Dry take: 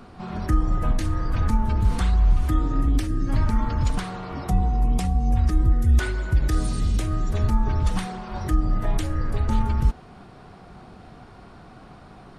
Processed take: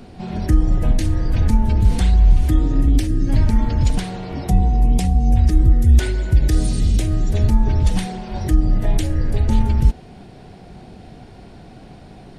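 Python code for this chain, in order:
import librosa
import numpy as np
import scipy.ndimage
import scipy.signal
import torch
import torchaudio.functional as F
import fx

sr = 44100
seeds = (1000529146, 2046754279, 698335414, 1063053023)

y = fx.peak_eq(x, sr, hz=1200.0, db=-14.5, octaves=0.7)
y = y * 10.0 ** (6.0 / 20.0)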